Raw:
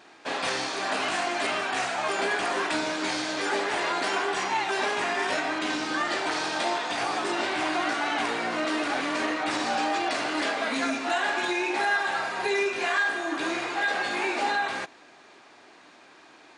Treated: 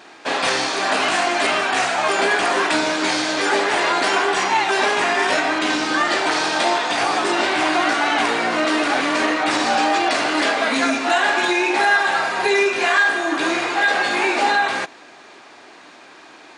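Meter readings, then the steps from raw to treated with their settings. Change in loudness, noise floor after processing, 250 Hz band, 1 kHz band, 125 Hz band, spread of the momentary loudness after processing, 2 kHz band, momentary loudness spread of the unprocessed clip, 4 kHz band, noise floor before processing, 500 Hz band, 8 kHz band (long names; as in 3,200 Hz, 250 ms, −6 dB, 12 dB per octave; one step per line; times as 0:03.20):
+9.0 dB, −44 dBFS, +8.0 dB, +9.0 dB, +7.0 dB, 3 LU, +9.0 dB, 3 LU, +9.0 dB, −53 dBFS, +8.5 dB, +9.0 dB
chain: low-shelf EQ 130 Hz −5 dB
level +9 dB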